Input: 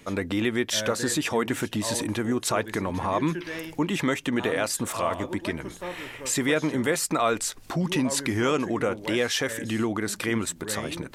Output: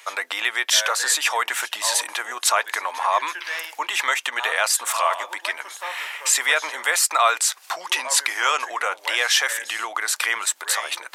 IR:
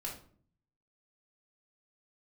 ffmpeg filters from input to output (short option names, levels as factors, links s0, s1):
-af "highpass=f=780:w=0.5412,highpass=f=780:w=1.3066,volume=2.82"